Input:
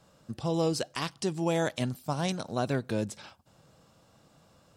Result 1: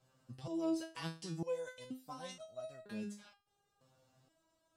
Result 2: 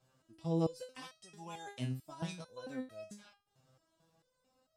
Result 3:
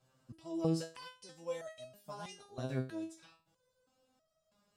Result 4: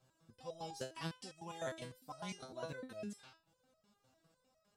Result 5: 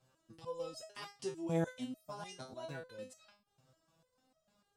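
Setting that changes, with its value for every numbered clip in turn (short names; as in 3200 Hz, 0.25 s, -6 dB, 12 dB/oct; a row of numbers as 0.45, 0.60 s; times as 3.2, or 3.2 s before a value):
stepped resonator, rate: 2.1, 4.5, 3.1, 9.9, 6.7 Hz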